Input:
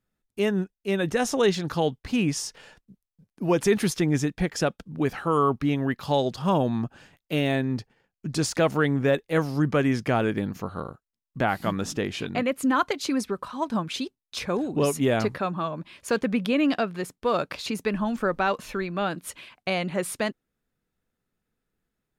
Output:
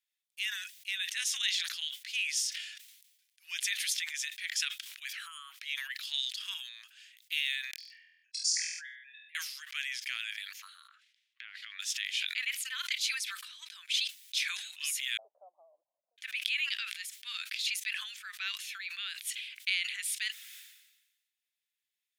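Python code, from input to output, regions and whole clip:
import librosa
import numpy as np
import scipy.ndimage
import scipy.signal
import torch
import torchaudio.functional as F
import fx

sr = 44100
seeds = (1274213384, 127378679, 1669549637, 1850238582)

y = fx.chain(x, sr, fx.spec_expand(power=2.1),
    fx.cheby_ripple_highpass(hz=1600.0, ripple_db=3),
    fx.room_flutter(wall_m=4.1, rt60_s=0.45), at=(7.71, 9.35))
y = fx.chain(y, sr, fx.bandpass_edges(low_hz=790.0, high_hz=2800.0),
    fx.over_compress(threshold_db=-39.0, ratio=-1.0), at=(10.88, 11.8))
y = fx.chain(y, sr, fx.steep_lowpass(hz=670.0, slope=72),
    fx.peak_eq(hz=410.0, db=-5.5, octaves=0.36), at=(15.17, 16.18))
y = scipy.signal.sosfilt(scipy.signal.butter(6, 2000.0, 'highpass', fs=sr, output='sos'), y)
y = fx.peak_eq(y, sr, hz=3400.0, db=4.5, octaves=0.31)
y = fx.sustainer(y, sr, db_per_s=53.0)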